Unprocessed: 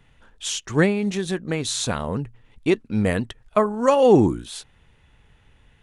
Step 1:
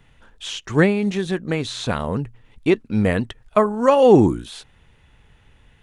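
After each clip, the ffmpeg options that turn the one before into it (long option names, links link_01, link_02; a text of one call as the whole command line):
ffmpeg -i in.wav -filter_complex "[0:a]acrossover=split=4000[link_01][link_02];[link_02]acompressor=threshold=-43dB:ratio=4:attack=1:release=60[link_03];[link_01][link_03]amix=inputs=2:normalize=0,volume=2.5dB" out.wav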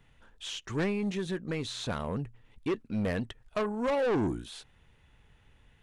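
ffmpeg -i in.wav -af "asoftclip=type=tanh:threshold=-17dB,volume=-8dB" out.wav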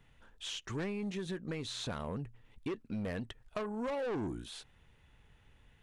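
ffmpeg -i in.wav -af "acompressor=threshold=-33dB:ratio=6,volume=-2dB" out.wav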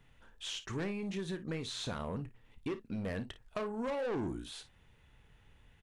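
ffmpeg -i in.wav -af "aecho=1:1:31|55:0.2|0.188" out.wav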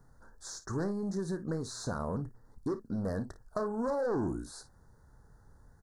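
ffmpeg -i in.wav -af "asuperstop=centerf=2700:order=8:qfactor=0.92,volume=4dB" out.wav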